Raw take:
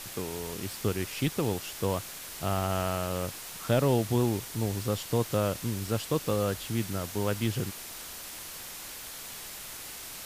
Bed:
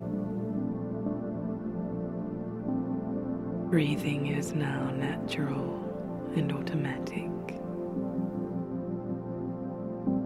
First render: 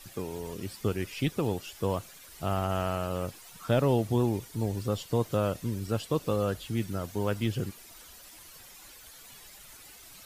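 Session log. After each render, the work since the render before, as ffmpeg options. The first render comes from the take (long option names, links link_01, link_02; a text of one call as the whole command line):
ffmpeg -i in.wav -af "afftdn=noise_reduction=12:noise_floor=-42" out.wav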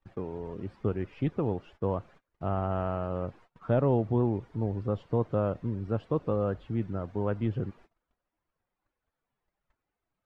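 ffmpeg -i in.wav -af "lowpass=1300,agate=range=-27dB:threshold=-52dB:ratio=16:detection=peak" out.wav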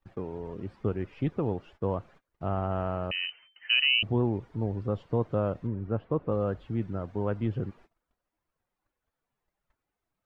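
ffmpeg -i in.wav -filter_complex "[0:a]asettb=1/sr,asplit=3[link_01][link_02][link_03];[link_01]atrim=end=3.114[link_04];[link_02]atrim=start=3.11:end=4.03,asetpts=PTS-STARTPTS,afade=type=in:duration=0.004:curve=qsin,afade=type=out:start_time=0.916:duration=0.004:curve=qsin,lowpass=frequency=2600:width_type=q:width=0.5098,lowpass=frequency=2600:width_type=q:width=0.6013,lowpass=frequency=2600:width_type=q:width=0.9,lowpass=frequency=2600:width_type=q:width=2.563,afreqshift=-3100[link_05];[link_03]atrim=start=4.026[link_06];[link_04][link_05]acrossfade=duration=0.004:curve1=hsin:curve2=qsin[link_07];[link_07][link_06]acrossfade=duration=0.004:curve1=qsin:curve2=hsin,asettb=1/sr,asplit=3[link_08][link_09][link_10];[link_08]atrim=end=5.674[link_11];[link_09]atrim=start=5.67:end=6.32,asetpts=PTS-STARTPTS,afade=type=in:duration=0.004:curve=qsin,afade=type=out:start_time=0.646:duration=0.004:curve=qsin,lowpass=2100[link_12];[link_10]atrim=start=6.316[link_13];[link_11][link_12]acrossfade=duration=0.004:curve1=hsin:curve2=qsin[link_14];[link_14][link_13]acrossfade=duration=0.004:curve1=qsin:curve2=hsin" out.wav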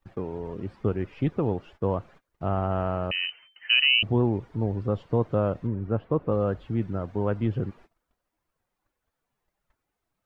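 ffmpeg -i in.wav -af "volume=3.5dB" out.wav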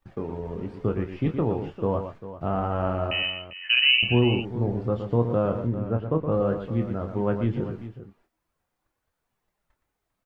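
ffmpeg -i in.wav -filter_complex "[0:a]asplit=2[link_01][link_02];[link_02]adelay=25,volume=-7.5dB[link_03];[link_01][link_03]amix=inputs=2:normalize=0,asplit=2[link_04][link_05];[link_05]aecho=0:1:118|397:0.376|0.211[link_06];[link_04][link_06]amix=inputs=2:normalize=0" out.wav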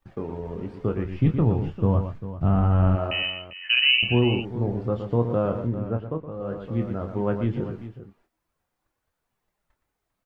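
ffmpeg -i in.wav -filter_complex "[0:a]asplit=3[link_01][link_02][link_03];[link_01]afade=type=out:start_time=1.04:duration=0.02[link_04];[link_02]asubboost=boost=6:cutoff=220,afade=type=in:start_time=1.04:duration=0.02,afade=type=out:start_time=2.95:duration=0.02[link_05];[link_03]afade=type=in:start_time=2.95:duration=0.02[link_06];[link_04][link_05][link_06]amix=inputs=3:normalize=0,asplit=3[link_07][link_08][link_09];[link_07]atrim=end=6.33,asetpts=PTS-STARTPTS,afade=type=out:start_time=5.87:duration=0.46:silence=0.237137[link_10];[link_08]atrim=start=6.33:end=6.34,asetpts=PTS-STARTPTS,volume=-12.5dB[link_11];[link_09]atrim=start=6.34,asetpts=PTS-STARTPTS,afade=type=in:duration=0.46:silence=0.237137[link_12];[link_10][link_11][link_12]concat=n=3:v=0:a=1" out.wav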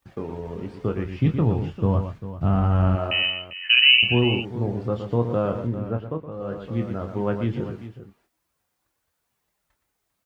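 ffmpeg -i in.wav -af "highpass=42,highshelf=frequency=2600:gain=8.5" out.wav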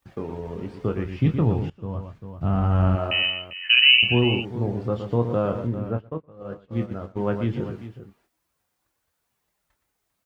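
ffmpeg -i in.wav -filter_complex "[0:a]asplit=3[link_01][link_02][link_03];[link_01]afade=type=out:start_time=5.97:duration=0.02[link_04];[link_02]agate=range=-33dB:threshold=-26dB:ratio=3:release=100:detection=peak,afade=type=in:start_time=5.97:duration=0.02,afade=type=out:start_time=7.23:duration=0.02[link_05];[link_03]afade=type=in:start_time=7.23:duration=0.02[link_06];[link_04][link_05][link_06]amix=inputs=3:normalize=0,asplit=2[link_07][link_08];[link_07]atrim=end=1.7,asetpts=PTS-STARTPTS,afade=type=out:start_time=1.696:duration=0.004:curve=hsin:silence=0.149624[link_09];[link_08]atrim=start=1.7,asetpts=PTS-STARTPTS,afade=type=in:duration=1.09:silence=0.149624[link_10];[link_09][link_10]concat=n=2:v=0:a=1" out.wav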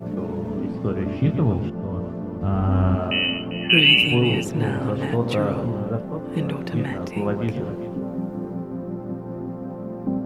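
ffmpeg -i in.wav -i bed.wav -filter_complex "[1:a]volume=4dB[link_01];[0:a][link_01]amix=inputs=2:normalize=0" out.wav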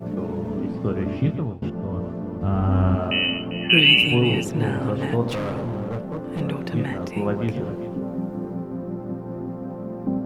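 ffmpeg -i in.wav -filter_complex "[0:a]asettb=1/sr,asplit=3[link_01][link_02][link_03];[link_01]atrim=end=5.284[link_04];[link_02]atrim=start=5.28:end=6.41,asetpts=PTS-STARTPTS,afade=type=in:duration=0.004:curve=qsin,afade=type=out:start_time=1.126:duration=0.004:curve=qsin,asoftclip=type=hard:threshold=-24dB[link_05];[link_03]atrim=start=6.406[link_06];[link_04][link_05]acrossfade=duration=0.004:curve1=hsin:curve2=qsin[link_07];[link_07][link_06]acrossfade=duration=0.004:curve1=qsin:curve2=hsin,asplit=2[link_08][link_09];[link_08]atrim=end=1.62,asetpts=PTS-STARTPTS,afade=type=out:start_time=1.18:duration=0.44:silence=0.0891251[link_10];[link_09]atrim=start=1.62,asetpts=PTS-STARTPTS,afade=type=in:duration=0.004:curve=hsin:silence=0.0891251[link_11];[link_10][link_11]concat=n=2:v=0:a=1" out.wav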